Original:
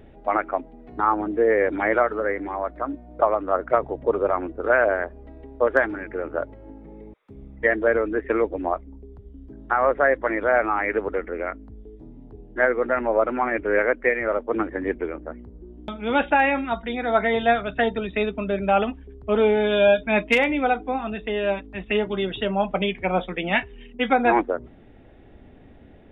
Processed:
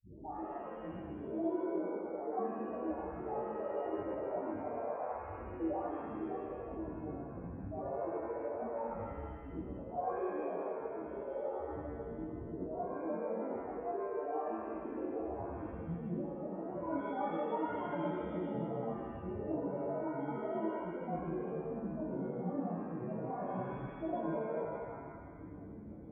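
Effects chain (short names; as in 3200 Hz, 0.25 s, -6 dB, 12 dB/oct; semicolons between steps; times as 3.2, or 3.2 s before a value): compressor, threshold -33 dBFS, peak gain reduction 19 dB; soft clip -32.5 dBFS, distortion -11 dB; rippled Chebyshev low-pass 720 Hz, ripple 6 dB; grains, grains 20/s, pitch spread up and down by 7 st; dispersion highs, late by 58 ms, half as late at 300 Hz; spectral gate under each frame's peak -10 dB strong; HPF 64 Hz; shimmer reverb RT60 1.5 s, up +7 st, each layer -8 dB, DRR -8 dB; gain -2 dB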